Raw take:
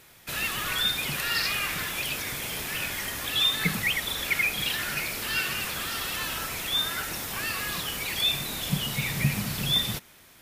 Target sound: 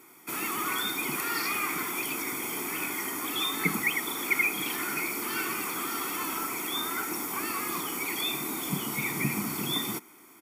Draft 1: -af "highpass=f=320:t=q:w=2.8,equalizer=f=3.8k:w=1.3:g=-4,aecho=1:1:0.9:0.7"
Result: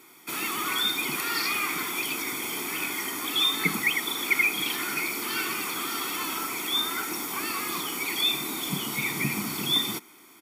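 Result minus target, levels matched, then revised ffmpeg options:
4000 Hz band +4.5 dB
-af "highpass=f=320:t=q:w=2.8,equalizer=f=3.8k:w=1.3:g=-12.5,aecho=1:1:0.9:0.7"

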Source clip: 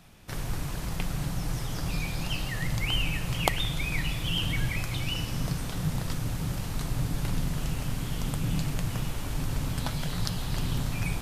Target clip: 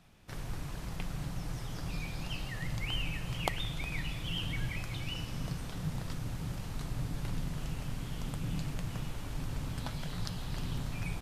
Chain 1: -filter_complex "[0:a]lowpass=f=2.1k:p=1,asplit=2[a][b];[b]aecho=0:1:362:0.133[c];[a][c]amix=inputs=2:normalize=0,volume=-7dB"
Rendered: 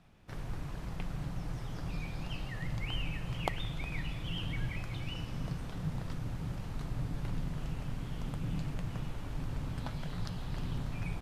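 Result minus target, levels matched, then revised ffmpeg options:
8000 Hz band -7.0 dB
-filter_complex "[0:a]lowpass=f=7k:p=1,asplit=2[a][b];[b]aecho=0:1:362:0.133[c];[a][c]amix=inputs=2:normalize=0,volume=-7dB"

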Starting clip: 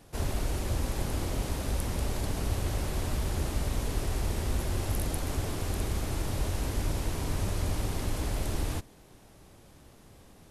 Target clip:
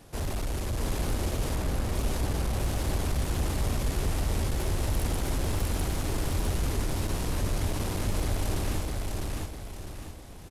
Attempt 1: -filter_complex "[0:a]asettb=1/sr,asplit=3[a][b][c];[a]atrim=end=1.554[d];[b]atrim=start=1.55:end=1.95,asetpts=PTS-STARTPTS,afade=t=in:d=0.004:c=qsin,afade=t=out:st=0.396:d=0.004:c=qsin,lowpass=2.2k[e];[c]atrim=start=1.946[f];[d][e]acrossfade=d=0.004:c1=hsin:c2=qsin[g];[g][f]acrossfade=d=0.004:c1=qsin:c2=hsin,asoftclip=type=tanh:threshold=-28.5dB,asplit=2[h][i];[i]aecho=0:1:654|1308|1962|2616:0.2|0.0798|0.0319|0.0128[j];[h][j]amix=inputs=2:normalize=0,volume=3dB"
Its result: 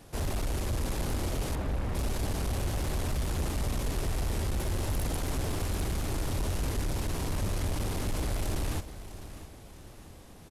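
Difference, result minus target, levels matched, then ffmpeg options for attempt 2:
echo-to-direct -12 dB
-filter_complex "[0:a]asettb=1/sr,asplit=3[a][b][c];[a]atrim=end=1.554[d];[b]atrim=start=1.55:end=1.95,asetpts=PTS-STARTPTS,afade=t=in:d=0.004:c=qsin,afade=t=out:st=0.396:d=0.004:c=qsin,lowpass=2.2k[e];[c]atrim=start=1.946[f];[d][e]acrossfade=d=0.004:c1=hsin:c2=qsin[g];[g][f]acrossfade=d=0.004:c1=qsin:c2=hsin,asoftclip=type=tanh:threshold=-28.5dB,asplit=2[h][i];[i]aecho=0:1:654|1308|1962|2616|3270:0.794|0.318|0.127|0.0508|0.0203[j];[h][j]amix=inputs=2:normalize=0,volume=3dB"

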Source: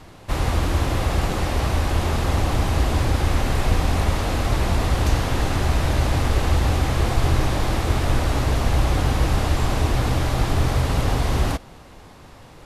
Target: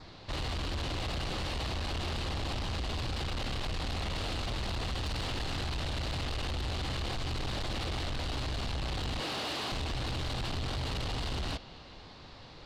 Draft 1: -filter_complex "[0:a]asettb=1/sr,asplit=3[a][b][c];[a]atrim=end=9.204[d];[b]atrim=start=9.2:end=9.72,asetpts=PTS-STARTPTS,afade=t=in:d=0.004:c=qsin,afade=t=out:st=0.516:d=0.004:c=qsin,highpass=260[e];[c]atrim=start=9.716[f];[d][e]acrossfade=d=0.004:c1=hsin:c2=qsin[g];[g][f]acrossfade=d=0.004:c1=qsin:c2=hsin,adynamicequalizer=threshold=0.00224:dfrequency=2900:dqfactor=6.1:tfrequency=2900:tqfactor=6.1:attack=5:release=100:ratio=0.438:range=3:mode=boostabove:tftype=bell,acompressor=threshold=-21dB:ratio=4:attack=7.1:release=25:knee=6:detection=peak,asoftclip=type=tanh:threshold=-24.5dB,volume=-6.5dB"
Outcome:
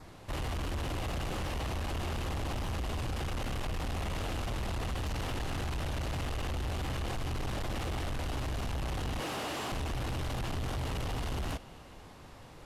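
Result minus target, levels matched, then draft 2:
4000 Hz band -5.0 dB
-filter_complex "[0:a]asettb=1/sr,asplit=3[a][b][c];[a]atrim=end=9.204[d];[b]atrim=start=9.2:end=9.72,asetpts=PTS-STARTPTS,afade=t=in:d=0.004:c=qsin,afade=t=out:st=0.516:d=0.004:c=qsin,highpass=260[e];[c]atrim=start=9.716[f];[d][e]acrossfade=d=0.004:c1=hsin:c2=qsin[g];[g][f]acrossfade=d=0.004:c1=qsin:c2=hsin,adynamicequalizer=threshold=0.00224:dfrequency=2900:dqfactor=6.1:tfrequency=2900:tqfactor=6.1:attack=5:release=100:ratio=0.438:range=3:mode=boostabove:tftype=bell,lowpass=f=4.3k:t=q:w=3.5,acompressor=threshold=-21dB:ratio=4:attack=7.1:release=25:knee=6:detection=peak,asoftclip=type=tanh:threshold=-24.5dB,volume=-6.5dB"

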